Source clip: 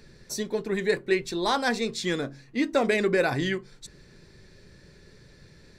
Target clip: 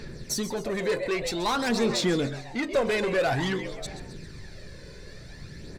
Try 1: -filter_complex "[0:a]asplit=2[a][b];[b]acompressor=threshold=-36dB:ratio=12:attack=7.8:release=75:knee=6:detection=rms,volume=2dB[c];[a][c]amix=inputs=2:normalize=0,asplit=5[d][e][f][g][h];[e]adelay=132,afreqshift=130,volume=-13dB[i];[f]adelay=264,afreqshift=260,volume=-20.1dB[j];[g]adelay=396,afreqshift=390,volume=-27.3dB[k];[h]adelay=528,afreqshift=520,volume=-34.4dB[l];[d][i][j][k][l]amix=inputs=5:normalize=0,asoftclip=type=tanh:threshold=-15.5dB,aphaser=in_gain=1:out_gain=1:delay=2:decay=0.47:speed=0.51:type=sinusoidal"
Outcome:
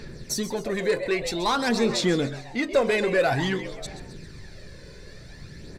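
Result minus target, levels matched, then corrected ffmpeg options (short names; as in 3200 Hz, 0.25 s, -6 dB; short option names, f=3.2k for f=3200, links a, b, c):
soft clip: distortion -7 dB
-filter_complex "[0:a]asplit=2[a][b];[b]acompressor=threshold=-36dB:ratio=12:attack=7.8:release=75:knee=6:detection=rms,volume=2dB[c];[a][c]amix=inputs=2:normalize=0,asplit=5[d][e][f][g][h];[e]adelay=132,afreqshift=130,volume=-13dB[i];[f]adelay=264,afreqshift=260,volume=-20.1dB[j];[g]adelay=396,afreqshift=390,volume=-27.3dB[k];[h]adelay=528,afreqshift=520,volume=-34.4dB[l];[d][i][j][k][l]amix=inputs=5:normalize=0,asoftclip=type=tanh:threshold=-22dB,aphaser=in_gain=1:out_gain=1:delay=2:decay=0.47:speed=0.51:type=sinusoidal"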